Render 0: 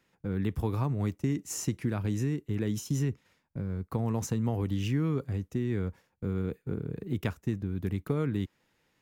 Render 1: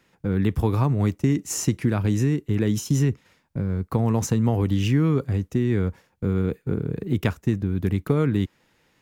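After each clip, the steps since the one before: high shelf 12000 Hz -3 dB; gain +8.5 dB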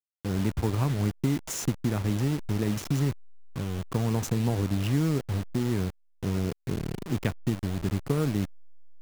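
level-crossing sampler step -26 dBFS; gain -5 dB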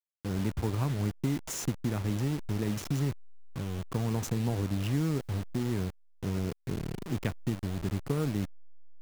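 G.711 law mismatch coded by mu; gain -4.5 dB

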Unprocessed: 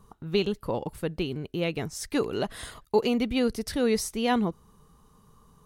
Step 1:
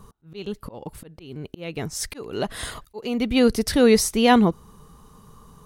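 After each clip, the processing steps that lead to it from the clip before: auto swell 0.568 s; gain +9 dB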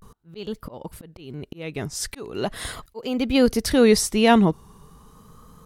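vibrato 0.4 Hz 88 cents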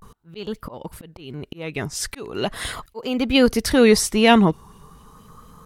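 LFO bell 4.3 Hz 890–3000 Hz +7 dB; gain +1.5 dB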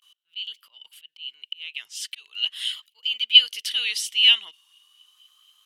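resonant high-pass 3000 Hz, resonance Q 13; gain -8.5 dB

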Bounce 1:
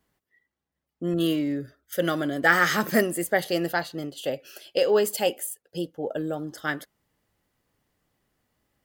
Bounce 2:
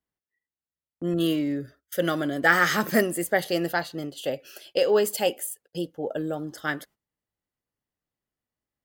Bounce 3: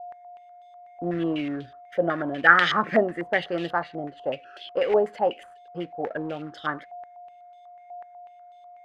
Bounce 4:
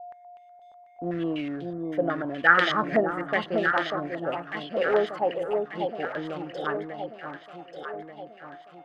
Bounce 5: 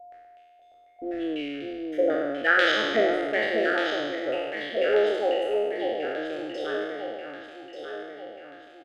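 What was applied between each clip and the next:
gate -51 dBFS, range -17 dB
whine 710 Hz -45 dBFS; short-mantissa float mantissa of 2-bit; stepped low-pass 8.1 Hz 750–3400 Hz; gain -3 dB
echo with dull and thin repeats by turns 0.593 s, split 1000 Hz, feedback 69%, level -4 dB; gain -2.5 dB
spectral trails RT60 1.52 s; fixed phaser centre 420 Hz, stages 4; downsampling 32000 Hz

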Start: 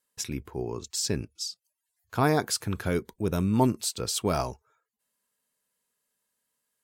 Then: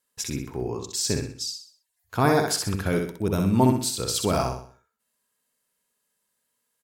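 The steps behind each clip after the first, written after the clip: feedback echo 63 ms, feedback 39%, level -4.5 dB; gain +2 dB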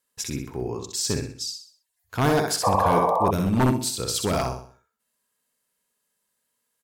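one-sided fold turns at -16 dBFS; painted sound noise, 2.63–3.31, 450–1200 Hz -21 dBFS

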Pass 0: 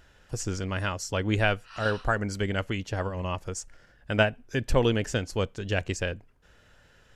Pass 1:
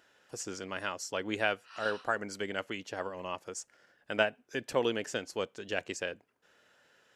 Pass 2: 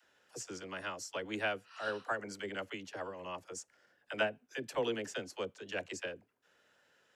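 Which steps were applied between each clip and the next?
HPF 290 Hz 12 dB/oct; gain -4.5 dB
dispersion lows, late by 48 ms, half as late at 420 Hz; gain -4.5 dB

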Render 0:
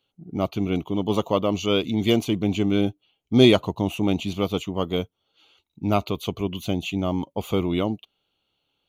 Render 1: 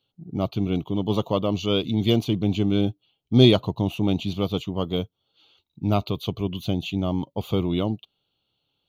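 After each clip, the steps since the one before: ten-band EQ 125 Hz +7 dB, 2000 Hz -6 dB, 4000 Hz +7 dB, 8000 Hz -9 dB; gain -2 dB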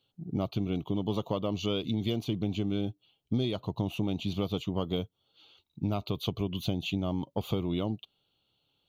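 compressor 12:1, threshold -26 dBFS, peak gain reduction 17.5 dB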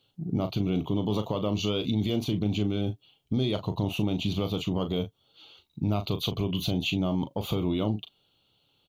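limiter -24 dBFS, peak gain reduction 7.5 dB; doubler 38 ms -9.5 dB; gain +6 dB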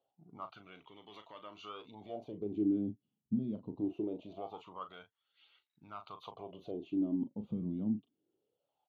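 wah 0.23 Hz 210–1900 Hz, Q 5.9; phaser 0.36 Hz, delay 3.4 ms, feedback 30%; gain +1 dB

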